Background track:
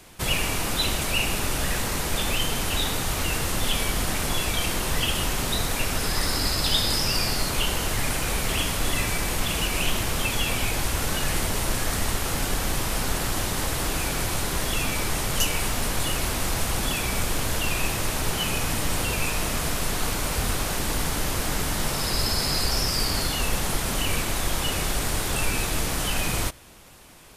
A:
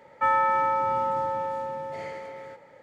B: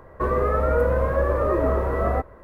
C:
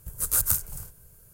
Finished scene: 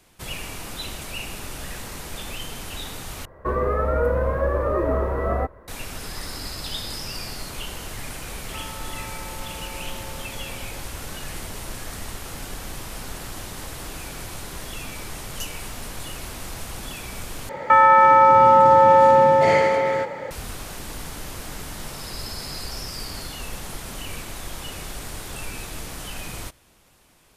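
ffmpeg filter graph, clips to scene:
-filter_complex "[1:a]asplit=2[s0][s1];[0:a]volume=0.376[s2];[s0]acompressor=threshold=0.0316:ratio=6:attack=3.2:release=140:knee=1:detection=peak[s3];[s1]alimiter=level_in=15.8:limit=0.891:release=50:level=0:latency=1[s4];[s2]asplit=3[s5][s6][s7];[s5]atrim=end=3.254[s8];[2:a]atrim=end=2.43,asetpts=PTS-STARTPTS,volume=0.891[s9];[s6]atrim=start=5.676:end=17.494[s10];[s4]atrim=end=2.82,asetpts=PTS-STARTPTS,volume=0.596[s11];[s7]atrim=start=20.306[s12];[s3]atrim=end=2.82,asetpts=PTS-STARTPTS,volume=0.398,afade=t=in:d=0.004:c=hsin,afade=t=out:st=2.816:d=0.004:c=hsin,adelay=8330[s13];[s8][s9]acrossfade=d=0.004:c1=hsin:c2=hsin[s14];[s14][s10]acrossfade=d=0.004:c1=hsin:c2=hsin[s15];[s15][s11]acrossfade=d=0.004:c1=hsin:c2=hsin[s16];[s16][s12]acrossfade=d=0.004:c1=hsin:c2=hsin[s17];[s17][s13]amix=inputs=2:normalize=0"

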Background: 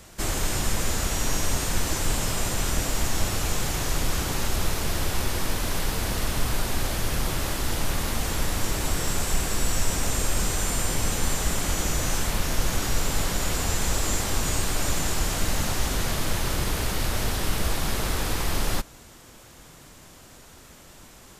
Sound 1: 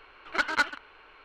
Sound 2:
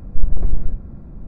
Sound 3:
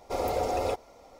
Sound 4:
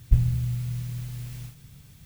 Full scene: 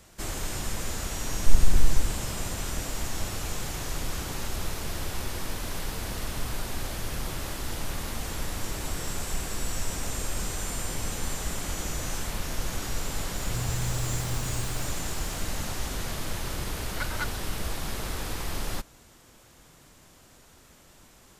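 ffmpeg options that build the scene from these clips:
-filter_complex "[0:a]volume=0.473[s0];[4:a]acompressor=threshold=0.0398:ratio=6:attack=3.2:release=140:knee=1:detection=peak[s1];[2:a]atrim=end=1.27,asetpts=PTS-STARTPTS,volume=0.708,afade=t=in:d=0.004:c=hsin,afade=t=out:st=1.266:d=0.004:c=hsin,adelay=1310[s2];[s1]atrim=end=2.05,asetpts=PTS-STARTPTS,volume=0.891,afade=t=in:d=0.004:c=hsin,afade=t=out:st=2.046:d=0.004:c=hsin,adelay=13360[s3];[1:a]atrim=end=1.24,asetpts=PTS-STARTPTS,volume=0.355,afade=t=in:d=0.004:c=hsin,afade=t=out:st=1.236:d=0.004:c=hsin,adelay=16620[s4];[s0][s2][s3][s4]amix=inputs=4:normalize=0"

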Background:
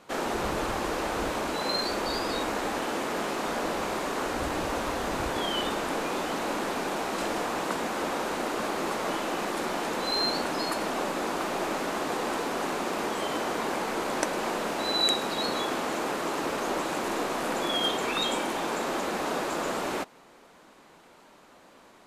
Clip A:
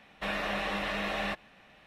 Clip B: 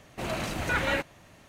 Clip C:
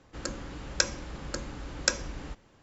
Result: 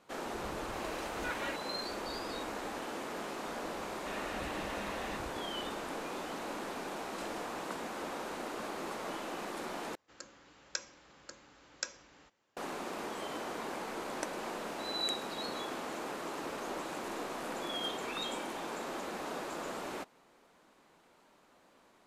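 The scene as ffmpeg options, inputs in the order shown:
-filter_complex "[0:a]volume=0.316[s0];[2:a]highpass=450[s1];[3:a]highpass=f=660:p=1[s2];[s0]asplit=2[s3][s4];[s3]atrim=end=9.954[s5];[s2]atrim=end=2.62,asetpts=PTS-STARTPTS,volume=0.251[s6];[s4]atrim=start=12.566[s7];[s1]atrim=end=1.48,asetpts=PTS-STARTPTS,volume=0.266,afade=t=in:d=0.004:c=hsin,afade=t=out:st=1.476:d=0.004:c=hsin,adelay=550[s8];[1:a]atrim=end=1.86,asetpts=PTS-STARTPTS,volume=0.282,afade=t=in:d=0.004:c=hsin,afade=t=out:st=1.856:d=0.004:c=hsin,adelay=3840[s9];[s5][s6]acrossfade=d=0.004:c1=hsin:c2=hsin[s10];[s10][s7]acrossfade=d=0.004:c1=hsin:c2=hsin[s11];[s11][s8][s9]amix=inputs=3:normalize=0"

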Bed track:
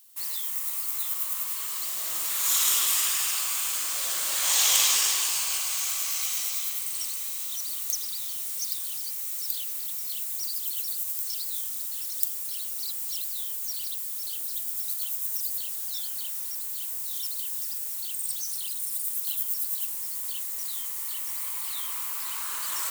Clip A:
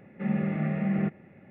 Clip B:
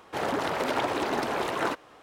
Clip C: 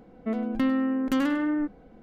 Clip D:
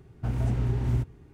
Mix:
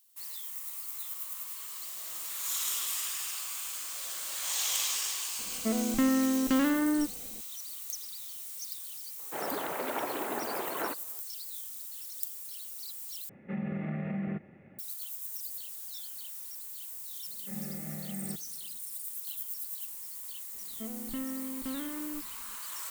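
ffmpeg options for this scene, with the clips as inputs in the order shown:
-filter_complex "[3:a]asplit=2[s0][s1];[1:a]asplit=2[s2][s3];[0:a]volume=0.335[s4];[2:a]highpass=190,lowpass=3000[s5];[s2]acompressor=threshold=0.0398:ratio=6:attack=3.2:release=140:knee=1:detection=peak[s6];[s1]lowshelf=f=170:g=8.5[s7];[s4]asplit=2[s8][s9];[s8]atrim=end=13.294[s10];[s6]atrim=end=1.5,asetpts=PTS-STARTPTS,volume=0.75[s11];[s9]atrim=start=14.786[s12];[s0]atrim=end=2.02,asetpts=PTS-STARTPTS,volume=0.841,afade=t=in:d=0.004:c=hsin,afade=t=out:st=2.016:d=0.004:c=hsin,adelay=5390[s13];[s5]atrim=end=2.02,asetpts=PTS-STARTPTS,volume=0.473,afade=t=in:d=0.004:c=hsin,afade=t=out:st=2.016:d=0.004:c=hsin,adelay=9190[s14];[s3]atrim=end=1.5,asetpts=PTS-STARTPTS,volume=0.224,afade=t=in:d=0.004:c=hsin,afade=t=out:st=1.496:d=0.004:c=hsin,adelay=17270[s15];[s7]atrim=end=2.02,asetpts=PTS-STARTPTS,volume=0.168,afade=t=in:d=0.004:c=hsin,afade=t=out:st=2.016:d=0.004:c=hsin,adelay=20540[s16];[s10][s11]acrossfade=d=0.004:c1=hsin:c2=hsin[s17];[s17][s12]acrossfade=d=0.004:c1=hsin:c2=hsin[s18];[s18][s13][s14][s15][s16]amix=inputs=5:normalize=0"

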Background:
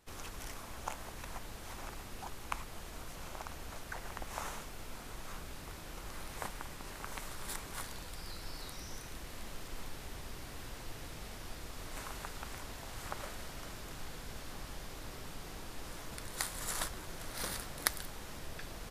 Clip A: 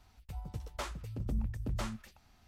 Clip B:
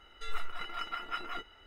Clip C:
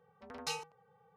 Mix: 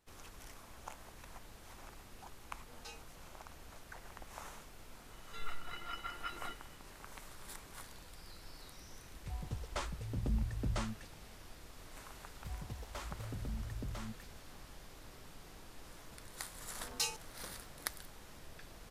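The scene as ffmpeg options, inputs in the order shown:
-filter_complex "[3:a]asplit=2[s0][s1];[1:a]asplit=2[s2][s3];[0:a]volume=0.398[s4];[s0]asplit=2[s5][s6];[s6]adelay=6.7,afreqshift=-2[s7];[s5][s7]amix=inputs=2:normalize=1[s8];[s2]aresample=22050,aresample=44100[s9];[s3]alimiter=level_in=2.51:limit=0.0631:level=0:latency=1:release=103,volume=0.398[s10];[s1]crystalizer=i=4:c=0[s11];[s8]atrim=end=1.16,asetpts=PTS-STARTPTS,volume=0.316,afade=t=in:d=0.004:c=hsin,afade=t=out:st=1.156:d=0.004:c=hsin,adelay=2380[s12];[2:a]atrim=end=1.66,asetpts=PTS-STARTPTS,volume=0.501,afade=t=in:d=0.004:c=hsin,afade=t=out:st=1.656:d=0.004:c=hsin,adelay=5120[s13];[s9]atrim=end=2.47,asetpts=PTS-STARTPTS,volume=0.944,afade=t=in:d=0.004:c=hsin,afade=t=out:st=2.466:d=0.004:c=hsin,adelay=8970[s14];[s10]atrim=end=2.47,asetpts=PTS-STARTPTS,volume=0.75,afade=t=in:d=0.004:c=hsin,afade=t=out:st=2.466:d=0.004:c=hsin,adelay=12160[s15];[s11]atrim=end=1.16,asetpts=PTS-STARTPTS,volume=0.501,afade=t=in:d=0.004:c=hsin,afade=t=out:st=1.156:d=0.004:c=hsin,adelay=16530[s16];[s4][s12][s13][s14][s15][s16]amix=inputs=6:normalize=0"

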